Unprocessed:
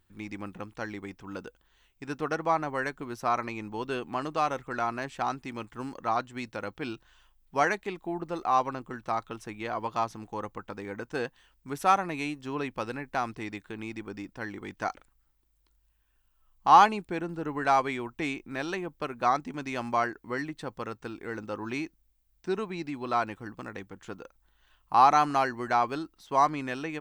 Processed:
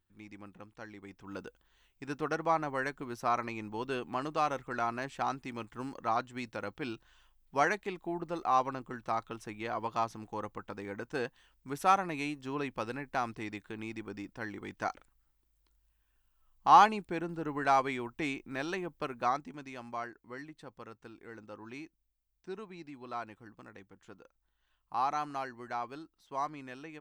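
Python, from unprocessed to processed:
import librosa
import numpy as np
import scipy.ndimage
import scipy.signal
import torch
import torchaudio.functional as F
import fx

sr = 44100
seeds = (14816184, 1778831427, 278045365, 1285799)

y = fx.gain(x, sr, db=fx.line((0.95, -11.0), (1.39, -3.0), (19.1, -3.0), (19.78, -12.0)))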